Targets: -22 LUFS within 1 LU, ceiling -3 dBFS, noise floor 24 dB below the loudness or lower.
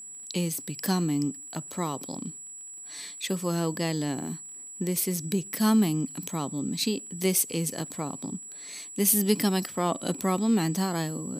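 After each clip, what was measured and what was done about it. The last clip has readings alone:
tick rate 26 per s; steady tone 7.8 kHz; tone level -40 dBFS; loudness -28.0 LUFS; peak level -10.0 dBFS; loudness target -22.0 LUFS
-> de-click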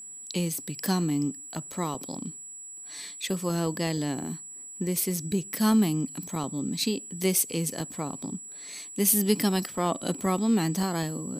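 tick rate 0.53 per s; steady tone 7.8 kHz; tone level -40 dBFS
-> band-stop 7.8 kHz, Q 30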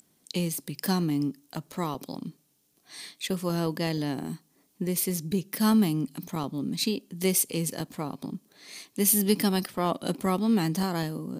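steady tone not found; loudness -28.0 LUFS; peak level -10.0 dBFS; loudness target -22.0 LUFS
-> trim +6 dB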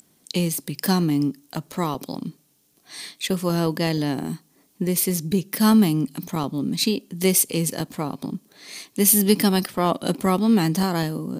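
loudness -22.0 LUFS; peak level -4.0 dBFS; noise floor -62 dBFS

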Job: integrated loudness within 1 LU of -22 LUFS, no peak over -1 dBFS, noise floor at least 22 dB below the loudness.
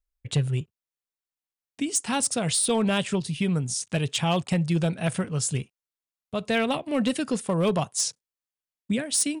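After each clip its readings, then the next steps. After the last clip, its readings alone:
clipped samples 0.5%; clipping level -17.0 dBFS; dropouts 1; longest dropout 2.8 ms; loudness -26.0 LUFS; peak level -17.0 dBFS; loudness target -22.0 LUFS
-> clip repair -17 dBFS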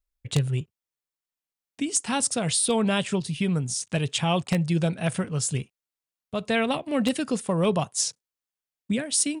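clipped samples 0.0%; dropouts 1; longest dropout 2.8 ms
-> interpolate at 3.80 s, 2.8 ms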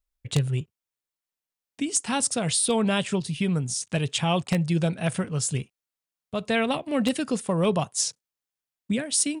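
dropouts 0; loudness -25.5 LUFS; peak level -8.0 dBFS; loudness target -22.0 LUFS
-> trim +3.5 dB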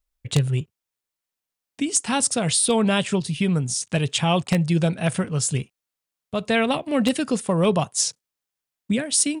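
loudness -22.0 LUFS; peak level -4.5 dBFS; noise floor -87 dBFS

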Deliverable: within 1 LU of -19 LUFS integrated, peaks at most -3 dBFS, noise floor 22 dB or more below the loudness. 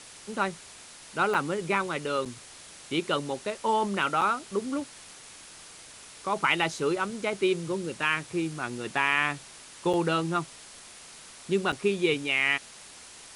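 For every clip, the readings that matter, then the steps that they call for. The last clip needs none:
dropouts 5; longest dropout 6.3 ms; noise floor -48 dBFS; noise floor target -50 dBFS; loudness -28.0 LUFS; peak level -10.5 dBFS; loudness target -19.0 LUFS
-> interpolate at 1.34/2.25/4.21/9.93/11.72 s, 6.3 ms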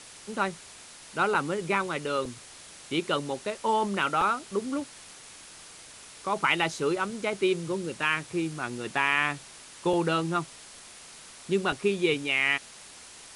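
dropouts 0; noise floor -48 dBFS; noise floor target -50 dBFS
-> noise reduction 6 dB, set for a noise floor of -48 dBFS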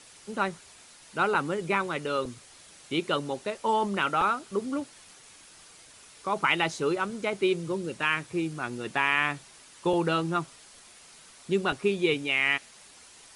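noise floor -53 dBFS; loudness -28.0 LUFS; peak level -10.5 dBFS; loudness target -19.0 LUFS
-> trim +9 dB; peak limiter -3 dBFS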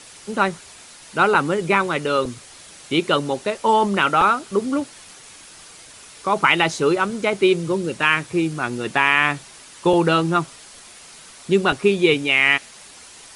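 loudness -19.5 LUFS; peak level -3.0 dBFS; noise floor -44 dBFS

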